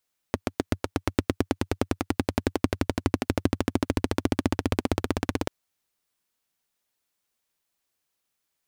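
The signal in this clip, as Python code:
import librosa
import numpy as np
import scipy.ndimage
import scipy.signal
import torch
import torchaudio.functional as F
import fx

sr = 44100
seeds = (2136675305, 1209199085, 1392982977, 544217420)

y = fx.engine_single_rev(sr, seeds[0], length_s=5.14, rpm=900, resonances_hz=(94.0, 260.0), end_rpm=2000)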